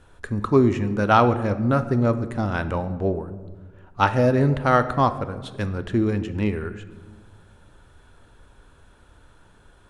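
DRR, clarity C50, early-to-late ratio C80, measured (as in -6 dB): 11.0 dB, 13.0 dB, 14.5 dB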